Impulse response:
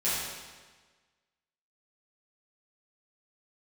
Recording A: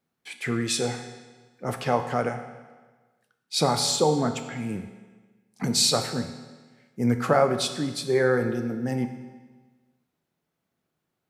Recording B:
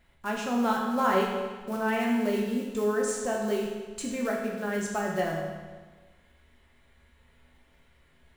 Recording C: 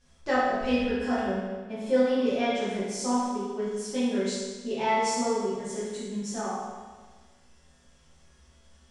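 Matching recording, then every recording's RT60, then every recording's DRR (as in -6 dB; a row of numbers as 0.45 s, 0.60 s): C; 1.4 s, 1.4 s, 1.4 s; 6.5 dB, -2.0 dB, -11.5 dB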